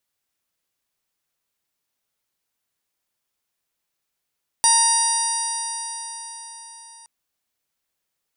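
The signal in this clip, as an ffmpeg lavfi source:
ffmpeg -f lavfi -i "aevalsrc='0.112*pow(10,-3*t/4.62)*sin(2*PI*919.28*t)+0.0299*pow(10,-3*t/4.62)*sin(2*PI*1846.25*t)+0.0211*pow(10,-3*t/4.62)*sin(2*PI*2788.48*t)+0.0282*pow(10,-3*t/4.62)*sin(2*PI*3753.35*t)+0.0794*pow(10,-3*t/4.62)*sin(2*PI*4747.93*t)+0.0944*pow(10,-3*t/4.62)*sin(2*PI*5778.94*t)+0.0141*pow(10,-3*t/4.62)*sin(2*PI*6852.66*t)+0.0398*pow(10,-3*t/4.62)*sin(2*PI*7974.92*t)+0.188*pow(10,-3*t/4.62)*sin(2*PI*9151.07*t)':duration=2.42:sample_rate=44100" out.wav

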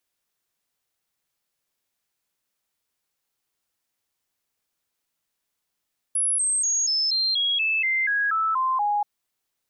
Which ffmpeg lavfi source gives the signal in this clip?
ffmpeg -f lavfi -i "aevalsrc='0.1*clip(min(mod(t,0.24),0.24-mod(t,0.24))/0.005,0,1)*sin(2*PI*10500*pow(2,-floor(t/0.24)/3)*mod(t,0.24))':duration=2.88:sample_rate=44100" out.wav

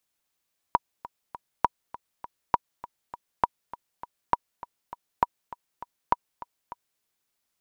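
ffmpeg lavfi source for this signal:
ffmpeg -f lavfi -i "aevalsrc='pow(10,(-6-18*gte(mod(t,3*60/201),60/201))/20)*sin(2*PI*963*mod(t,60/201))*exp(-6.91*mod(t,60/201)/0.03)':duration=6.26:sample_rate=44100" out.wav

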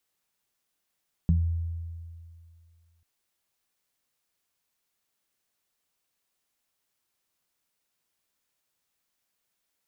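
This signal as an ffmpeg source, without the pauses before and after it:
ffmpeg -f lavfi -i "aevalsrc='0.112*pow(10,-3*t/2.26)*sin(2*PI*83.6*t)+0.133*pow(10,-3*t/0.27)*sin(2*PI*167.2*t)':duration=1.74:sample_rate=44100" out.wav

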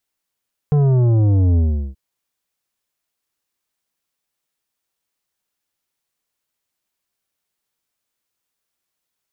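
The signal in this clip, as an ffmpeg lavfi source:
ffmpeg -f lavfi -i "aevalsrc='0.237*clip((1.23-t)/0.38,0,1)*tanh(3.16*sin(2*PI*150*1.23/log(65/150)*(exp(log(65/150)*t/1.23)-1)))/tanh(3.16)':duration=1.23:sample_rate=44100" out.wav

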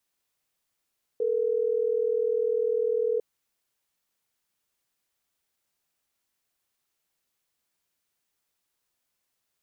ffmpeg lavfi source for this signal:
ffmpeg -f lavfi -i "aevalsrc='0.0531*(sin(2*PI*440*t)+sin(2*PI*480*t))*clip(min(mod(t,6),2-mod(t,6))/0.005,0,1)':duration=3.12:sample_rate=44100" out.wav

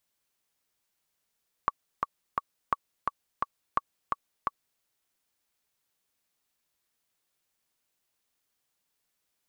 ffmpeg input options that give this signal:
ffmpeg -f lavfi -i "aevalsrc='pow(10,(-11-3*gte(mod(t,3*60/172),60/172))/20)*sin(2*PI*1130*mod(t,60/172))*exp(-6.91*mod(t,60/172)/0.03)':duration=3.13:sample_rate=44100" out.wav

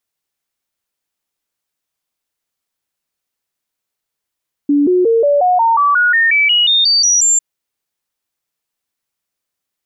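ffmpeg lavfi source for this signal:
ffmpeg -f lavfi -i "aevalsrc='0.376*clip(min(mod(t,0.18),0.18-mod(t,0.18))/0.005,0,1)*sin(2*PI*288*pow(2,floor(t/0.18)/3)*mod(t,0.18))':duration=2.7:sample_rate=44100" out.wav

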